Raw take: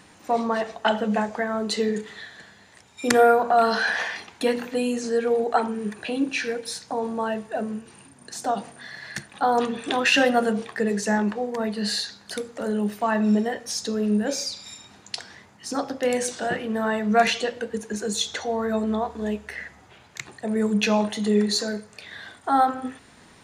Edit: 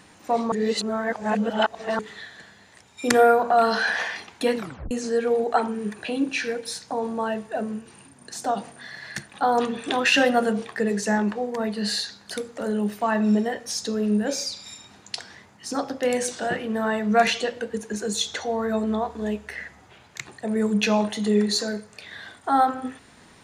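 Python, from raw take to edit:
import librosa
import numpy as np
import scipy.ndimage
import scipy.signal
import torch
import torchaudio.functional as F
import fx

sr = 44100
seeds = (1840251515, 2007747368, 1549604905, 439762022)

y = fx.edit(x, sr, fx.reverse_span(start_s=0.52, length_s=1.47),
    fx.tape_stop(start_s=4.57, length_s=0.34), tone=tone)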